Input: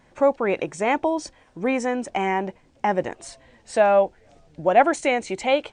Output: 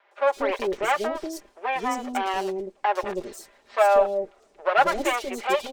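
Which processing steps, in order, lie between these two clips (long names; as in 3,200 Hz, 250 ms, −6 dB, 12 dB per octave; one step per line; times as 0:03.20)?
lower of the sound and its delayed copy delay 5 ms
low shelf with overshoot 250 Hz −12 dB, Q 1.5
three-band delay without the direct sound mids, highs, lows 110/190 ms, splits 470/3,900 Hz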